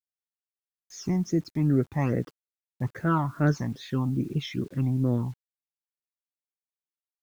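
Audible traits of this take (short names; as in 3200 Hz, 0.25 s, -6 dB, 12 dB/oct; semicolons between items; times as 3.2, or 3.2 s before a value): phasing stages 12, 2.4 Hz, lowest notch 460–1000 Hz; a quantiser's noise floor 10-bit, dither none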